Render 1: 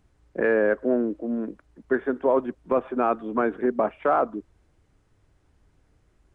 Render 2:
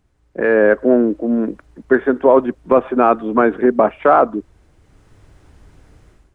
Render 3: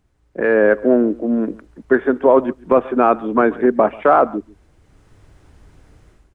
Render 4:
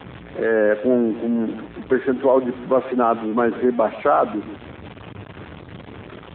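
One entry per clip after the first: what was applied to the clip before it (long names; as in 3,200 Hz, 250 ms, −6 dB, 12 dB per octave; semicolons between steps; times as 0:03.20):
automatic gain control gain up to 16 dB
single-tap delay 138 ms −22.5 dB; level −1 dB
converter with a step at zero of −22 dBFS; level −4.5 dB; AMR narrowband 7.4 kbit/s 8,000 Hz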